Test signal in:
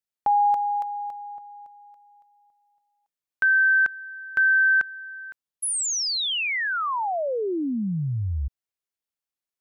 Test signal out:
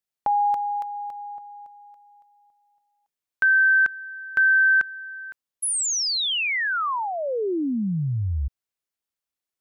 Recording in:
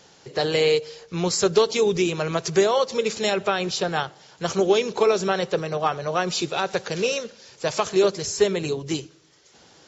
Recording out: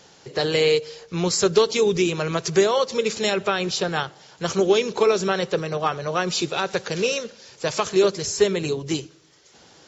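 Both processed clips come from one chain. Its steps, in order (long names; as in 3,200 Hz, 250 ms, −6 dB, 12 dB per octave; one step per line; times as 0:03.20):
dynamic equaliser 720 Hz, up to −4 dB, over −34 dBFS, Q 2.2
level +1.5 dB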